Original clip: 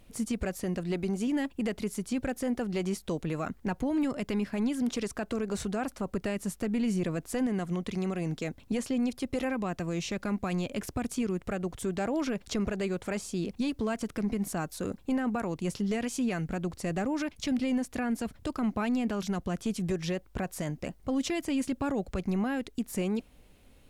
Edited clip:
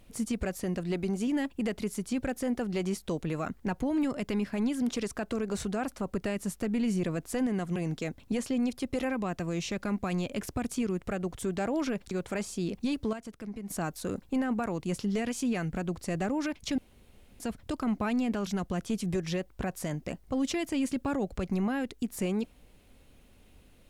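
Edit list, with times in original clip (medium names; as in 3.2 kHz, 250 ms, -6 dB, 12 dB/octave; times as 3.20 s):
7.76–8.16 s: delete
12.51–12.87 s: delete
13.89–14.46 s: gain -9 dB
17.54–18.16 s: room tone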